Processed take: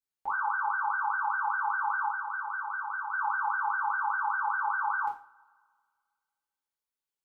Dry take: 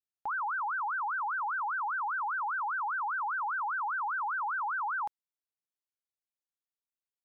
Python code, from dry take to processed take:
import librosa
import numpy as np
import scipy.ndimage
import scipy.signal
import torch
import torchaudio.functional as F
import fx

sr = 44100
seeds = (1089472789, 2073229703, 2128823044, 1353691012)

y = fx.peak_eq(x, sr, hz=630.0, db=-8.5, octaves=2.1, at=(2.08, 3.12))
y = fx.rev_double_slope(y, sr, seeds[0], early_s=0.37, late_s=1.9, knee_db=-26, drr_db=-4.5)
y = y * librosa.db_to_amplitude(-4.0)